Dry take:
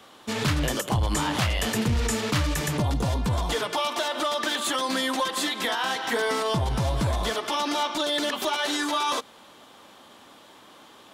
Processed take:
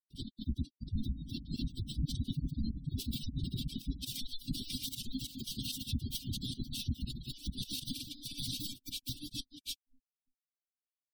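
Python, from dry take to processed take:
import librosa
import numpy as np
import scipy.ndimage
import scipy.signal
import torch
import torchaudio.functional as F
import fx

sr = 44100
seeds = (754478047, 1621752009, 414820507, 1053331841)

p1 = fx.schmitt(x, sr, flips_db=-31.5)
p2 = fx.tilt_eq(p1, sr, slope=2.5)
p3 = fx.doubler(p2, sr, ms=17.0, db=-9.5)
p4 = fx.fold_sine(p3, sr, drive_db=18, ceiling_db=-22.5)
p5 = fx.comb_fb(p4, sr, f0_hz=130.0, decay_s=0.23, harmonics='all', damping=0.0, mix_pct=70)
p6 = p5 + fx.echo_feedback(p5, sr, ms=73, feedback_pct=52, wet_db=-14.0, dry=0)
p7 = fx.dereverb_blind(p6, sr, rt60_s=0.85)
p8 = fx.volume_shaper(p7, sr, bpm=143, per_beat=2, depth_db=-17, release_ms=94.0, shape='slow start')
p9 = fx.granulator(p8, sr, seeds[0], grain_ms=100.0, per_s=20.0, spray_ms=864.0, spread_st=0)
p10 = scipy.signal.sosfilt(scipy.signal.ellip(3, 1.0, 50, [260.0, 3500.0], 'bandstop', fs=sr, output='sos'), p9)
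p11 = fx.peak_eq(p10, sr, hz=6900.0, db=-5.0, octaves=0.2)
p12 = fx.spec_gate(p11, sr, threshold_db=-20, keep='strong')
y = p12 * 10.0 ** (5.5 / 20.0)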